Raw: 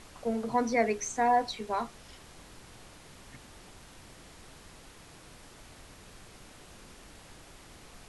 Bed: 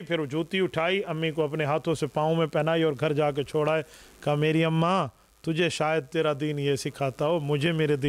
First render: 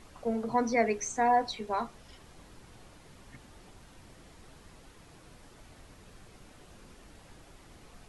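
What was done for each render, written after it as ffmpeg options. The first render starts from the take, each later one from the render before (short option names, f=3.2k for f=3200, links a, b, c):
-af "afftdn=nr=6:nf=-53"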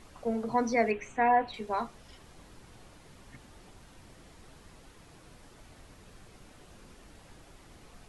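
-filter_complex "[0:a]asettb=1/sr,asplit=3[a][b][c];[a]atrim=end=0.914[d];[b]atrim=start=0.91:end=1.54,asetpts=PTS-STARTPTS,afade=t=in:d=0.004:c=qsin,afade=t=out:st=0.626:d=0.004:c=qsin,highshelf=f=3.8k:t=q:w=3:g=-12[e];[c]atrim=start=1.536[f];[d][e]acrossfade=d=0.004:c1=hsin:c2=qsin[g];[g][f]acrossfade=d=0.004:c1=qsin:c2=hsin"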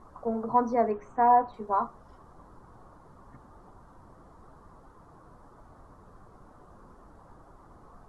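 -af "highshelf=f=1.7k:t=q:w=3:g=-14"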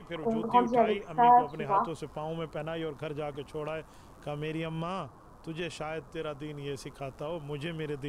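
-filter_complex "[1:a]volume=-11.5dB[a];[0:a][a]amix=inputs=2:normalize=0"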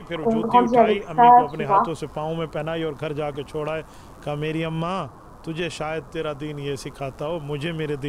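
-af "volume=9dB,alimiter=limit=-3dB:level=0:latency=1"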